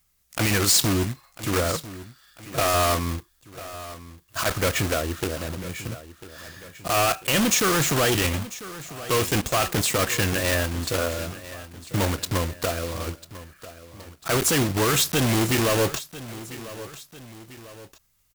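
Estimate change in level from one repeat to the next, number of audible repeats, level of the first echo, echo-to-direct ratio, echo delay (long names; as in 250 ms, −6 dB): −6.0 dB, 2, −16.0 dB, −15.0 dB, 996 ms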